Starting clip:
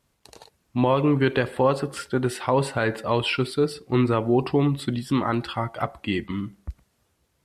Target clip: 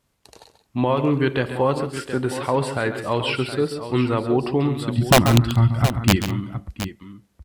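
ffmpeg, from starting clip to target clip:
ffmpeg -i in.wav -filter_complex "[0:a]asplit=3[link_01][link_02][link_03];[link_01]afade=type=out:start_time=4.97:duration=0.02[link_04];[link_02]asubboost=boost=10.5:cutoff=170,afade=type=in:start_time=4.97:duration=0.02,afade=type=out:start_time=6.15:duration=0.02[link_05];[link_03]afade=type=in:start_time=6.15:duration=0.02[link_06];[link_04][link_05][link_06]amix=inputs=3:normalize=0,aeval=exprs='(mod(2*val(0)+1,2)-1)/2':channel_layout=same,asplit=2[link_07][link_08];[link_08]aecho=0:1:136|183|719:0.299|0.1|0.266[link_09];[link_07][link_09]amix=inputs=2:normalize=0" out.wav

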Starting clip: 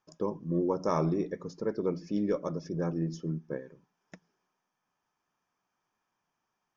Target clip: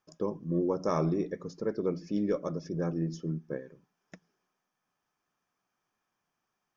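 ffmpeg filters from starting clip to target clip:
ffmpeg -i in.wav -af "equalizer=frequency=930:width_type=o:width=0.21:gain=-6" out.wav

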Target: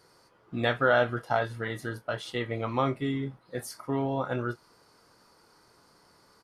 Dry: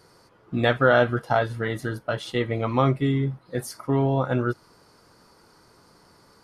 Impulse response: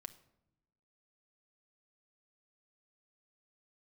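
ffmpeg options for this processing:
-filter_complex "[0:a]lowshelf=frequency=340:gain=-5.5,asplit=2[link_01][link_02];[link_02]adelay=26,volume=-11.5dB[link_03];[link_01][link_03]amix=inputs=2:normalize=0,volume=-4dB"

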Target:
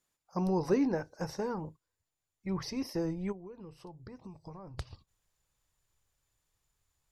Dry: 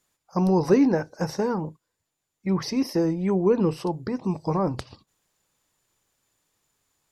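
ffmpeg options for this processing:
ffmpeg -i in.wav -filter_complex "[0:a]asubboost=boost=7:cutoff=89,asplit=3[link_01][link_02][link_03];[link_01]afade=type=out:start_time=3.31:duration=0.02[link_04];[link_02]acompressor=threshold=-36dB:ratio=12,afade=type=in:start_time=3.31:duration=0.02,afade=type=out:start_time=4.77:duration=0.02[link_05];[link_03]afade=type=in:start_time=4.77:duration=0.02[link_06];[link_04][link_05][link_06]amix=inputs=3:normalize=0,volume=-8.5dB" out.wav

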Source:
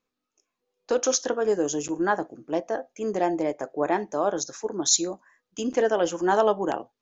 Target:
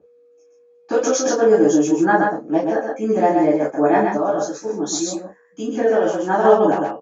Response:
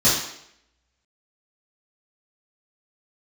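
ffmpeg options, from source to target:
-filter_complex "[0:a]lowpass=frequency=1400:poles=1,lowshelf=frequency=460:gain=-10,aecho=1:1:126:0.631,aeval=exprs='val(0)+0.00158*sin(2*PI*480*n/s)':channel_layout=same[link_01];[1:a]atrim=start_sample=2205,atrim=end_sample=3528,asetrate=57330,aresample=44100[link_02];[link_01][link_02]afir=irnorm=-1:irlink=0,asettb=1/sr,asplit=3[link_03][link_04][link_05];[link_03]atrim=end=4.174[link_06];[link_04]atrim=start=4.17:end=6.45,asetpts=PTS-STARTPTS,afade=type=in:duration=0.004:curve=qsin,afade=type=out:start_time=2.276:duration=0.004:curve=qsin,flanger=delay=8.5:depth=5.2:regen=-61:speed=1.9:shape=triangular[link_07];[link_05]atrim=start=6.446[link_08];[link_06][link_07]acrossfade=duration=0.004:curve1=hsin:curve2=qsin[link_09];[link_09][link_08]acrossfade=duration=0.004:curve1=qsin:curve2=hsin,volume=-4.5dB"

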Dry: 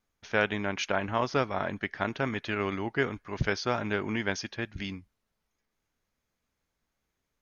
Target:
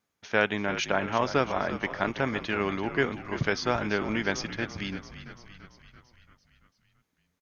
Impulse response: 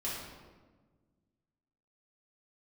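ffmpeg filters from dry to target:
-filter_complex "[0:a]highpass=110,asplit=2[link_01][link_02];[link_02]asplit=7[link_03][link_04][link_05][link_06][link_07][link_08][link_09];[link_03]adelay=338,afreqshift=-52,volume=-12dB[link_10];[link_04]adelay=676,afreqshift=-104,volume=-16.6dB[link_11];[link_05]adelay=1014,afreqshift=-156,volume=-21.2dB[link_12];[link_06]adelay=1352,afreqshift=-208,volume=-25.7dB[link_13];[link_07]adelay=1690,afreqshift=-260,volume=-30.3dB[link_14];[link_08]adelay=2028,afreqshift=-312,volume=-34.9dB[link_15];[link_09]adelay=2366,afreqshift=-364,volume=-39.5dB[link_16];[link_10][link_11][link_12][link_13][link_14][link_15][link_16]amix=inputs=7:normalize=0[link_17];[link_01][link_17]amix=inputs=2:normalize=0,volume=2dB"

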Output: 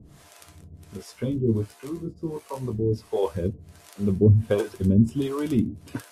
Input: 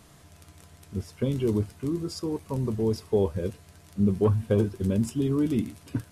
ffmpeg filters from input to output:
ffmpeg -i in.wav -filter_complex "[0:a]acrossover=split=430[link_01][link_02];[link_01]aeval=exprs='val(0)*(1-1/2+1/2*cos(2*PI*1.4*n/s))':channel_layout=same[link_03];[link_02]aeval=exprs='val(0)*(1-1/2-1/2*cos(2*PI*1.4*n/s))':channel_layout=same[link_04];[link_03][link_04]amix=inputs=2:normalize=0,asettb=1/sr,asplit=3[link_05][link_06][link_07];[link_05]atrim=end=0.974[link_08];[link_06]atrim=start=0.97:end=3.23,asetpts=PTS-STARTPTS,afade=type=in:duration=0.004:curve=qsin,afade=type=out:start_time=2.256:duration=0.004:curve=qsin,flanger=delay=15.5:depth=2.4:speed=1.1[link_09];[link_07]atrim=start=3.226[link_10];[link_08][link_09]acrossfade=duration=0.004:curve1=hsin:curve2=qsin[link_11];[link_11][link_10]acrossfade=duration=0.004:curve1=qsin:curve2=hsin,volume=8dB" out.wav

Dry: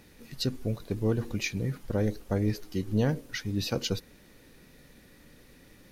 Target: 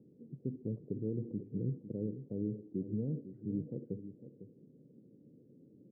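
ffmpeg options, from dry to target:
ffmpeg -i in.wav -af "alimiter=limit=-24dB:level=0:latency=1:release=75,asuperpass=centerf=230:order=8:qfactor=0.67,aecho=1:1:503:0.251,volume=-1.5dB" out.wav

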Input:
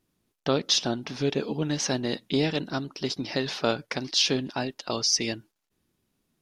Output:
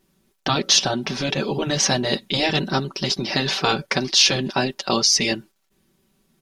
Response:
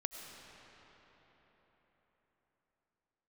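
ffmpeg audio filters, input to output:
-af "aecho=1:1:5.2:0.67,afftfilt=real='re*lt(hypot(re,im),0.316)':imag='im*lt(hypot(re,im),0.316)':win_size=1024:overlap=0.75,volume=8.5dB"

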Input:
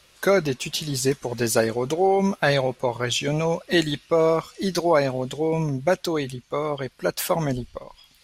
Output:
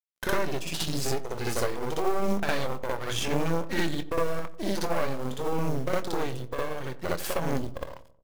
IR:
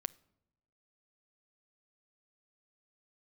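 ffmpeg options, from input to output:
-filter_complex "[0:a]highshelf=frequency=2800:gain=-5,acompressor=threshold=-34dB:ratio=3,aeval=exprs='sgn(val(0))*max(abs(val(0))-0.00447,0)':channel_layout=same,aeval=exprs='0.126*(cos(1*acos(clip(val(0)/0.126,-1,1)))-cos(1*PI/2))+0.0251*(cos(6*acos(clip(val(0)/0.126,-1,1)))-cos(6*PI/2))':channel_layout=same,acrusher=bits=5:mode=log:mix=0:aa=0.000001,asplit=2[link_01][link_02];[link_02]adelay=24,volume=-12dB[link_03];[link_01][link_03]amix=inputs=2:normalize=0,asplit=2[link_04][link_05];[link_05]adelay=90,lowpass=frequency=950:poles=1,volume=-14.5dB,asplit=2[link_06][link_07];[link_07]adelay=90,lowpass=frequency=950:poles=1,volume=0.52,asplit=2[link_08][link_09];[link_09]adelay=90,lowpass=frequency=950:poles=1,volume=0.52,asplit=2[link_10][link_11];[link_11]adelay=90,lowpass=frequency=950:poles=1,volume=0.52,asplit=2[link_12][link_13];[link_13]adelay=90,lowpass=frequency=950:poles=1,volume=0.52[link_14];[link_04][link_06][link_08][link_10][link_12][link_14]amix=inputs=6:normalize=0,asplit=2[link_15][link_16];[1:a]atrim=start_sample=2205,afade=type=out:start_time=0.29:duration=0.01,atrim=end_sample=13230,adelay=60[link_17];[link_16][link_17]afir=irnorm=-1:irlink=0,volume=5dB[link_18];[link_15][link_18]amix=inputs=2:normalize=0"

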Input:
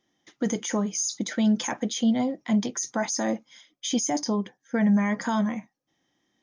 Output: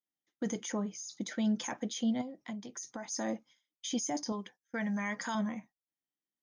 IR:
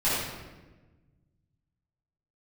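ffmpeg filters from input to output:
-filter_complex "[0:a]asettb=1/sr,asplit=3[link_01][link_02][link_03];[link_01]atrim=end=0.724[link_04];[link_02]atrim=start=0.72:end=1.17,asetpts=PTS-STARTPTS,afade=type=in:duration=0.004:curve=qsin,afade=type=out:start_time=0.446:duration=0.004:curve=qsin,lowpass=frequency=2700:poles=1[link_05];[link_03]atrim=start=1.166[link_06];[link_04][link_05]acrossfade=duration=0.004:curve1=hsin:curve2=qsin[link_07];[link_07][link_06]acrossfade=duration=0.004:curve1=qsin:curve2=hsin,asettb=1/sr,asplit=3[link_08][link_09][link_10];[link_08]atrim=end=4.324[link_11];[link_09]atrim=start=4.32:end=5.35,asetpts=PTS-STARTPTS,afade=type=in:duration=0.004:curve=qsin,afade=type=out:start_time=1.026:duration=0.004:curve=qsin,tiltshelf=frequency=890:gain=-6[link_12];[link_10]atrim=start=5.346[link_13];[link_11][link_12]acrossfade=duration=0.004:curve1=hsin:curve2=qsin[link_14];[link_14][link_13]acrossfade=duration=0.004:curve1=qsin:curve2=hsin,agate=range=-20dB:threshold=-46dB:ratio=16:detection=peak,asettb=1/sr,asplit=3[link_15][link_16][link_17];[link_15]atrim=end=2.214[link_18];[link_16]atrim=start=2.21:end=3.11,asetpts=PTS-STARTPTS,afade=type=in:duration=0.004:curve=qsin,afade=type=out:start_time=0.896:duration=0.004:curve=qsin,acompressor=threshold=-30dB:ratio=12[link_19];[link_17]atrim=start=3.106[link_20];[link_18][link_19]acrossfade=duration=0.004:curve1=hsin:curve2=qsin[link_21];[link_21][link_20]acrossfade=duration=0.004:curve1=qsin:curve2=hsin,volume=-8.5dB"

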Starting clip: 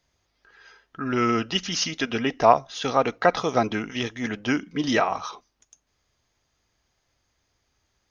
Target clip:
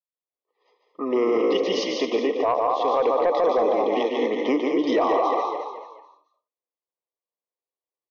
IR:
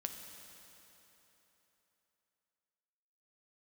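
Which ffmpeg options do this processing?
-filter_complex "[0:a]agate=range=-33dB:threshold=-41dB:ratio=3:detection=peak,equalizer=frequency=2700:width=0.51:gain=-9.5,asplit=5[link_01][link_02][link_03][link_04][link_05];[link_02]adelay=216,afreqshift=51,volume=-8dB[link_06];[link_03]adelay=432,afreqshift=102,volume=-16.6dB[link_07];[link_04]adelay=648,afreqshift=153,volume=-25.3dB[link_08];[link_05]adelay=864,afreqshift=204,volume=-33.9dB[link_09];[link_01][link_06][link_07][link_08][link_09]amix=inputs=5:normalize=0,asplit=2[link_10][link_11];[1:a]atrim=start_sample=2205,atrim=end_sample=3969,adelay=145[link_12];[link_11][link_12]afir=irnorm=-1:irlink=0,volume=-2dB[link_13];[link_10][link_13]amix=inputs=2:normalize=0,dynaudnorm=framelen=110:gausssize=5:maxgain=8.5dB,asuperstop=centerf=1500:order=12:qfactor=2.4,highpass=frequency=320:width=0.5412,highpass=frequency=320:width=1.3066,equalizer=frequency=500:width_type=q:width=4:gain=8,equalizer=frequency=1100:width_type=q:width=4:gain=7,equalizer=frequency=2700:width_type=q:width=4:gain=-4,lowpass=frequency=4100:width=0.5412,lowpass=frequency=4100:width=1.3066,asoftclip=type=tanh:threshold=-3.5dB,alimiter=limit=-13.5dB:level=0:latency=1:release=38"

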